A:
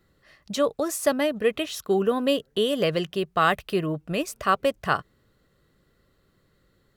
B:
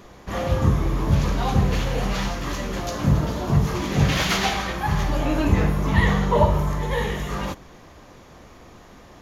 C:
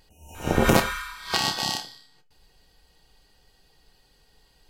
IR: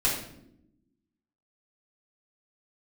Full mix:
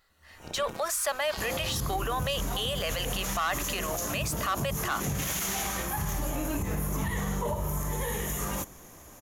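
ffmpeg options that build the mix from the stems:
-filter_complex "[0:a]highpass=frequency=690:width=0.5412,highpass=frequency=690:width=1.3066,asoftclip=type=tanh:threshold=-19.5dB,volume=1.5dB[link_01];[1:a]acompressor=threshold=-20dB:ratio=6,aexciter=amount=7.4:drive=6.9:freq=6500,adelay=1100,volume=-12dB[link_02];[2:a]acompressor=threshold=-27dB:ratio=6,volume=-14dB[link_03];[link_01][link_02][link_03]amix=inputs=3:normalize=0,dynaudnorm=framelen=180:gausssize=9:maxgain=6.5dB,alimiter=limit=-21.5dB:level=0:latency=1:release=28"

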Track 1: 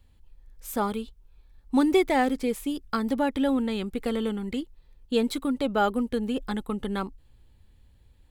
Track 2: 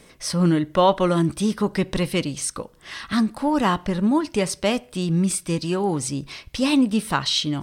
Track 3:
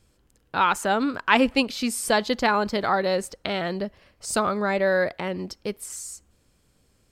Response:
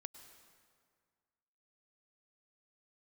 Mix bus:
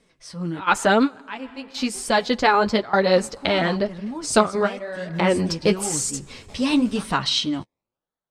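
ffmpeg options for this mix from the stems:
-filter_complex "[0:a]highpass=620,acrusher=samples=24:mix=1:aa=0.000001:lfo=1:lforange=14.4:lforate=0.95,flanger=delay=19.5:depth=7.6:speed=2.4,volume=-13dB,asplit=2[link_01][link_02];[1:a]volume=-9.5dB,asplit=3[link_03][link_04][link_05];[link_03]atrim=end=0.6,asetpts=PTS-STARTPTS,afade=type=out:start_time=0.596:duration=0.004:curve=hsin[link_06];[link_04]atrim=start=0.6:end=3.16,asetpts=PTS-STARTPTS,volume=0[link_07];[link_05]atrim=start=3.16,asetpts=PTS-STARTPTS,afade=type=in:duration=0.004:curve=hsin[link_08];[link_06][link_07][link_08]concat=n=3:v=0:a=1,asplit=2[link_09][link_10];[link_10]volume=-13dB[link_11];[2:a]dynaudnorm=framelen=430:gausssize=3:maxgain=8.5dB,volume=2.5dB,asplit=2[link_12][link_13];[link_13]volume=-13.5dB[link_14];[link_02]apad=whole_len=313926[link_15];[link_12][link_15]sidechaingate=range=-33dB:threshold=-59dB:ratio=16:detection=peak[link_16];[3:a]atrim=start_sample=2205[link_17];[link_11][link_14]amix=inputs=2:normalize=0[link_18];[link_18][link_17]afir=irnorm=-1:irlink=0[link_19];[link_01][link_09][link_16][link_19]amix=inputs=4:normalize=0,lowpass=8200,dynaudnorm=framelen=220:gausssize=7:maxgain=15dB,flanger=delay=4:depth=8.5:regen=-19:speed=0.98:shape=triangular"

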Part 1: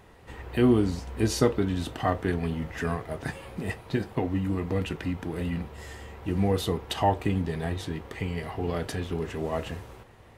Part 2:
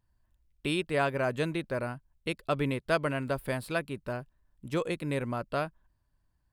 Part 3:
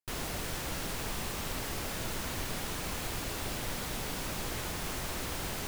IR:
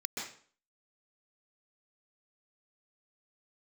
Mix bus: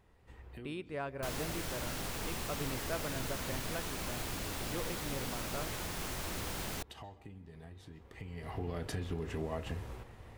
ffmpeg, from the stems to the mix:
-filter_complex "[0:a]lowshelf=frequency=100:gain=10.5,acompressor=threshold=-30dB:ratio=10,volume=-3dB,afade=type=in:start_time=8.12:duration=0.58:silence=0.223872,asplit=2[link_01][link_02];[link_02]volume=-17.5dB[link_03];[1:a]highshelf=frequency=3200:gain=-10.5,volume=-11dB,asplit=3[link_04][link_05][link_06];[link_05]volume=-20.5dB[link_07];[2:a]adelay=1150,volume=-3dB[link_08];[link_06]apad=whole_len=457393[link_09];[link_01][link_09]sidechaincompress=threshold=-48dB:ratio=3:attack=16:release=390[link_10];[3:a]atrim=start_sample=2205[link_11];[link_03][link_07]amix=inputs=2:normalize=0[link_12];[link_12][link_11]afir=irnorm=-1:irlink=0[link_13];[link_10][link_04][link_08][link_13]amix=inputs=4:normalize=0"

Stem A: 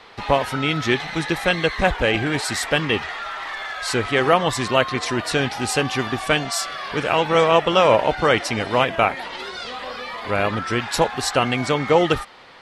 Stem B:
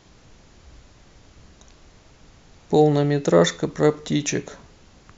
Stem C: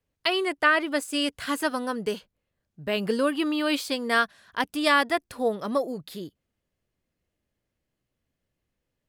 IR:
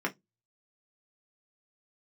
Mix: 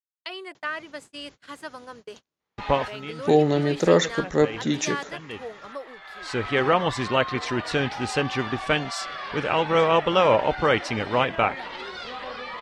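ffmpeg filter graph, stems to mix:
-filter_complex "[0:a]highshelf=frequency=6200:gain=-9.5,adelay=2400,volume=-3dB[link_01];[1:a]highpass=150,adelay=550,volume=-1.5dB[link_02];[2:a]highpass=370,volume=-10dB,asplit=2[link_03][link_04];[link_04]apad=whole_len=662130[link_05];[link_01][link_05]sidechaincompress=threshold=-51dB:ratio=3:attack=16:release=470[link_06];[link_06][link_02][link_03]amix=inputs=3:normalize=0,lowpass=7900,bandreject=frequency=680:width=18,agate=range=-33dB:threshold=-44dB:ratio=16:detection=peak"

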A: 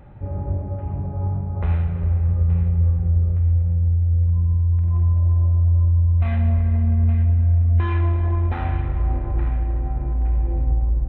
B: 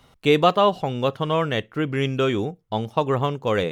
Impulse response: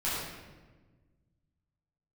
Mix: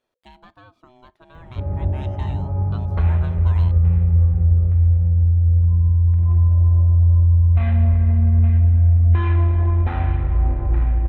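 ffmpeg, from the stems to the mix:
-filter_complex "[0:a]equalizer=frequency=67:width_type=o:width=0.87:gain=4,adelay=1350,volume=0.5dB[link_01];[1:a]acompressor=threshold=-19dB:ratio=10,aeval=exprs='val(0)*sin(2*PI*500*n/s)':channel_layout=same,volume=-10.5dB,afade=type=in:start_time=1.32:duration=0.66:silence=0.298538[link_02];[link_01][link_02]amix=inputs=2:normalize=0"

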